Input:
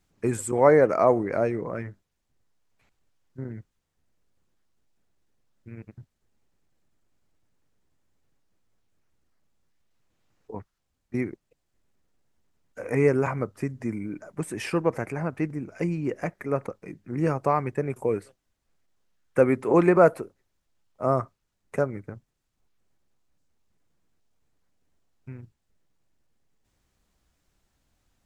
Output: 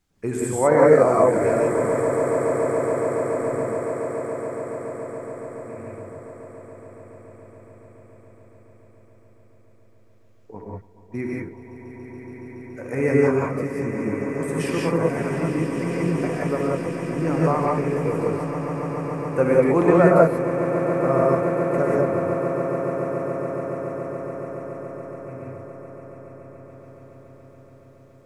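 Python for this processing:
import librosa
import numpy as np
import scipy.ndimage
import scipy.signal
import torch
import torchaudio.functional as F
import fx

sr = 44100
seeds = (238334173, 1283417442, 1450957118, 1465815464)

y = fx.echo_swell(x, sr, ms=141, loudest=8, wet_db=-14)
y = fx.rev_gated(y, sr, seeds[0], gate_ms=210, shape='rising', drr_db=-3.5)
y = y * 10.0 ** (-2.0 / 20.0)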